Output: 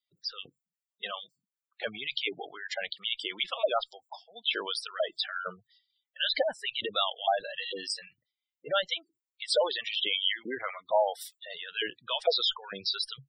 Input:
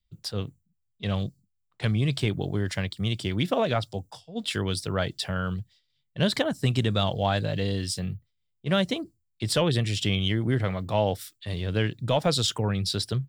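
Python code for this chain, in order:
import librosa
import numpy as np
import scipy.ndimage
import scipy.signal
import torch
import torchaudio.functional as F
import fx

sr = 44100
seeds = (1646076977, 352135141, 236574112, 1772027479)

y = fx.filter_lfo_highpass(x, sr, shape='saw_up', hz=2.2, low_hz=580.0, high_hz=2200.0, q=1.2)
y = fx.dynamic_eq(y, sr, hz=3100.0, q=3.4, threshold_db=-43.0, ratio=4.0, max_db=3)
y = fx.cheby_harmonics(y, sr, harmonics=(4, 5), levels_db=(-30, -42), full_scale_db=-11.0)
y = fx.low_shelf(y, sr, hz=430.0, db=5.5)
y = fx.spec_gate(y, sr, threshold_db=-10, keep='strong')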